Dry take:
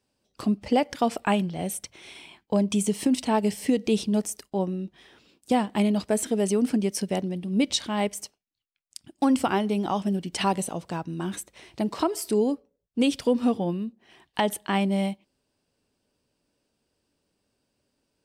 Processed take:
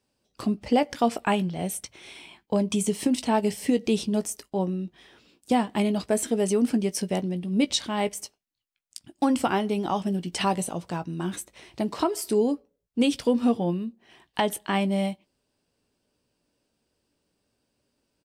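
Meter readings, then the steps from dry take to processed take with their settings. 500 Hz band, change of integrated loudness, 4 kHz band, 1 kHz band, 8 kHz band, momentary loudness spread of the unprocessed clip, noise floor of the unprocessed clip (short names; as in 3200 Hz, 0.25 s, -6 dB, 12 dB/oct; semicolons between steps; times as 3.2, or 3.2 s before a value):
+0.5 dB, 0.0 dB, +0.5 dB, +0.5 dB, +0.5 dB, 12 LU, -78 dBFS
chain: doubler 17 ms -12 dB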